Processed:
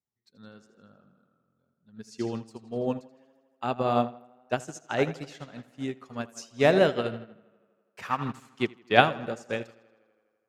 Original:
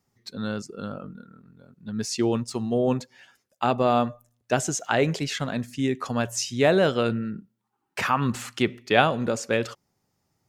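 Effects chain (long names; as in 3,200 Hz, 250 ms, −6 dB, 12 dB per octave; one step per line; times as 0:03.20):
on a send: tape delay 81 ms, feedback 79%, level −9 dB, low-pass 5,300 Hz
on the sum: expander for the loud parts 2.5 to 1, over −32 dBFS
level +2.5 dB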